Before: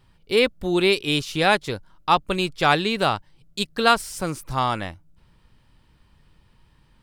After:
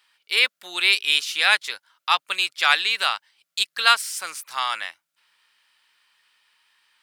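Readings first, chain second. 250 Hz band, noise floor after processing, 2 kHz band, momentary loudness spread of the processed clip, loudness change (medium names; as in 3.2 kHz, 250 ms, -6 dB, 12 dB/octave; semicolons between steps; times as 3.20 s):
under -25 dB, -82 dBFS, +4.5 dB, 13 LU, +1.0 dB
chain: Chebyshev high-pass 1.8 kHz, order 2; trim +5.5 dB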